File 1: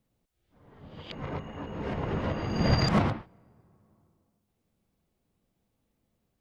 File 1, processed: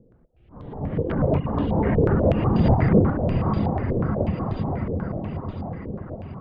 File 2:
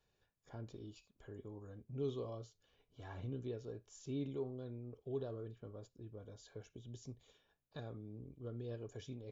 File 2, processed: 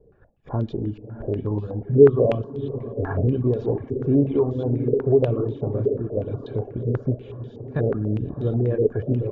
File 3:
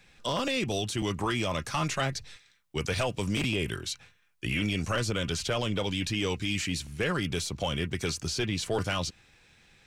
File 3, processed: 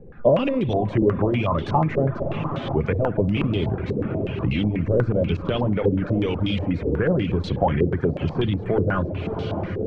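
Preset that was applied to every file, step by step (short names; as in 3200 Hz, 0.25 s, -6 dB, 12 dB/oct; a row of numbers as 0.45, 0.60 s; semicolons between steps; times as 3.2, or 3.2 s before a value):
tilt shelf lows +9.5 dB, about 920 Hz; on a send: diffused feedback echo 0.641 s, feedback 60%, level -11.5 dB; on the sum: spring tank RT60 1.1 s, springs 57 ms, chirp 40 ms, DRR 8 dB; in parallel at -12 dB: hard clip -19 dBFS; on the sum: compressor 2.5:1, threshold -30 dBFS; reverb removal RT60 0.56 s; stepped low-pass 8.2 Hz 460–3600 Hz; match loudness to -23 LUFS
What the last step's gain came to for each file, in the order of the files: +10.0, +14.0, +7.5 dB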